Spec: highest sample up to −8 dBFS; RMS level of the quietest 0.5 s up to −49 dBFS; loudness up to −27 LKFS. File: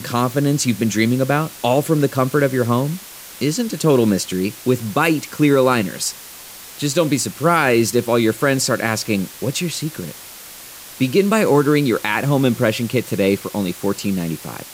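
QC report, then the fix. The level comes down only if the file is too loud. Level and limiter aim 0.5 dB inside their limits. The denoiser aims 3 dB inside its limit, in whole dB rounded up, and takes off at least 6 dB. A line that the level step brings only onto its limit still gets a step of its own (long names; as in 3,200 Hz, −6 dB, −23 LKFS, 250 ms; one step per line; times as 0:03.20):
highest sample −3.5 dBFS: out of spec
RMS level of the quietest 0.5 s −37 dBFS: out of spec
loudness −18.5 LKFS: out of spec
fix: broadband denoise 6 dB, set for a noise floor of −37 dBFS
level −9 dB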